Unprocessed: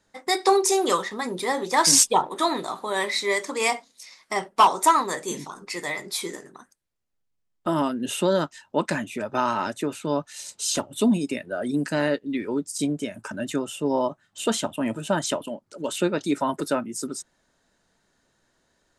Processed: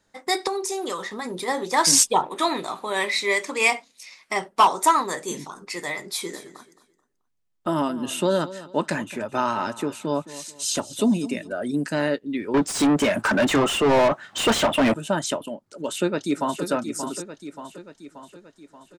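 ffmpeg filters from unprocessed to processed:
-filter_complex "[0:a]asettb=1/sr,asplit=3[a][b][c];[a]atrim=end=0.474[d];[b]atrim=start=0.47:end=1.48,asetpts=PTS-STARTPTS,afade=t=in:d=0.004:c=qsin,afade=t=out:st=1.006:d=0.004:c=qsin,acompressor=threshold=-27dB:ratio=3:attack=3.2:release=140:knee=1:detection=peak[e];[c]atrim=start=1.476[f];[d][e]acrossfade=d=0.004:c1=hsin:c2=qsin[g];[g][f]acrossfade=d=0.004:c1=qsin:c2=hsin,asettb=1/sr,asplit=3[h][i][j];[h]atrim=end=2.224[k];[i]atrim=start=2.22:end=4.38,asetpts=PTS-STARTPTS,afade=t=in:d=0.004:c=qsin,afade=t=out:st=2.156:d=0.004:c=qsin,equalizer=f=2.5k:t=o:w=0.5:g=8[l];[j]atrim=start=4.376[m];[k][l]acrossfade=d=0.004:c1=hsin:c2=qsin[n];[n][m]acrossfade=d=0.004:c1=qsin:c2=hsin,asplit=3[o][p][q];[o]afade=t=out:st=6.32:d=0.02[r];[p]aecho=1:1:217|434|651:0.158|0.0491|0.0152,afade=t=in:st=6.32:d=0.02,afade=t=out:st=11.52:d=0.02[s];[q]afade=t=in:st=11.52:d=0.02[t];[r][s][t]amix=inputs=3:normalize=0,asettb=1/sr,asplit=3[u][v][w];[u]atrim=end=12.544[x];[v]atrim=start=12.54:end=14.94,asetpts=PTS-STARTPTS,afade=t=in:d=0.004:c=qsin,afade=t=out:st=2.396:d=0.004:c=qsin,asplit=2[y][z];[z]highpass=f=720:p=1,volume=32dB,asoftclip=type=tanh:threshold=-10.5dB[aa];[y][aa]amix=inputs=2:normalize=0,lowpass=f=2k:p=1,volume=-6dB[ab];[w]atrim=start=14.936[ac];[x][ab]acrossfade=d=0.004:c1=hsin:c2=qsin[ad];[ad][ac]acrossfade=d=0.004:c1=qsin:c2=hsin,asplit=2[ae][af];[af]afade=t=in:st=15.69:d=0.01,afade=t=out:st=16.62:d=0.01,aecho=0:1:580|1160|1740|2320|2900|3480|4060:0.398107|0.218959|0.120427|0.0662351|0.0364293|0.0200361|0.0110199[ag];[ae][ag]amix=inputs=2:normalize=0"

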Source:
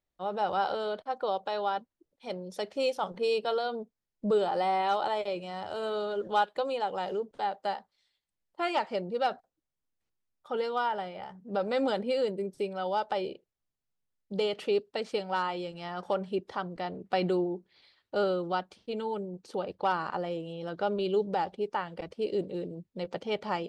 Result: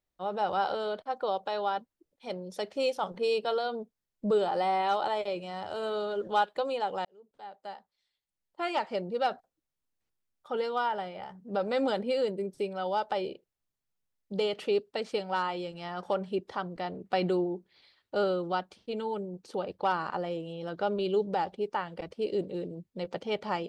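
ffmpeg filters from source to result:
-filter_complex "[0:a]asplit=2[a][b];[a]atrim=end=7.05,asetpts=PTS-STARTPTS,afade=t=out:st=7.046:d=0.004:c=hsin[c];[b]atrim=start=7.05,asetpts=PTS-STARTPTS,afade=t=in:d=1.97[d];[c][d]concat=n=2:v=0:a=1"

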